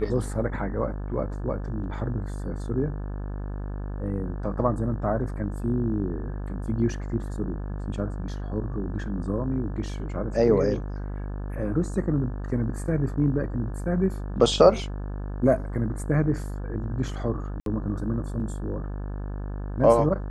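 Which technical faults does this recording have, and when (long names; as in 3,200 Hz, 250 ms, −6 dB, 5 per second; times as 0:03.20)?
mains buzz 50 Hz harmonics 35 −32 dBFS
0:17.60–0:17.66: drop-out 62 ms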